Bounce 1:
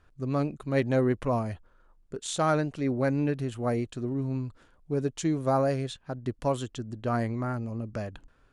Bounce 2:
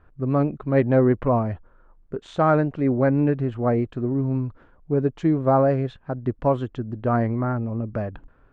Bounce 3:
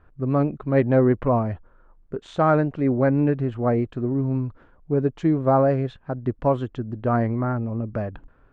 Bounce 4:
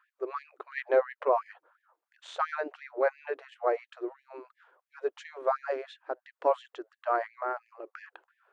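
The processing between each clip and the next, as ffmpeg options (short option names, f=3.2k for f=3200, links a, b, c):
-af "lowpass=1.6k,volume=7dB"
-af anull
-af "asubboost=boost=7.5:cutoff=120,afftfilt=real='re*gte(b*sr/1024,300*pow(1700/300,0.5+0.5*sin(2*PI*2.9*pts/sr)))':imag='im*gte(b*sr/1024,300*pow(1700/300,0.5+0.5*sin(2*PI*2.9*pts/sr)))':win_size=1024:overlap=0.75,volume=-1.5dB"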